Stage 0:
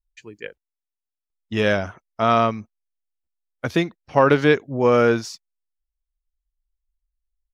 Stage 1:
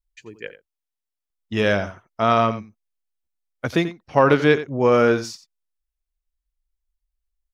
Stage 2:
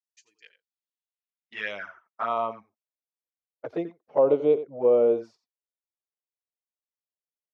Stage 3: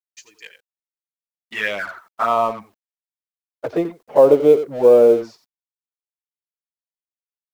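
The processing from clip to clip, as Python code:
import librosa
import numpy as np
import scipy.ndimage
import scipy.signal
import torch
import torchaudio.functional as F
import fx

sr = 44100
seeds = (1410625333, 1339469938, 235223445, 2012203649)

y1 = x + 10.0 ** (-14.0 / 20.0) * np.pad(x, (int(88 * sr / 1000.0), 0))[:len(x)]
y2 = fx.env_flanger(y1, sr, rest_ms=8.3, full_db=-14.5)
y2 = fx.filter_sweep_bandpass(y2, sr, from_hz=5800.0, to_hz=530.0, start_s=0.28, end_s=3.15, q=2.2)
y2 = scipy.signal.sosfilt(scipy.signal.butter(2, 97.0, 'highpass', fs=sr, output='sos'), y2)
y3 = fx.law_mismatch(y2, sr, coded='mu')
y3 = y3 * 10.0 ** (8.5 / 20.0)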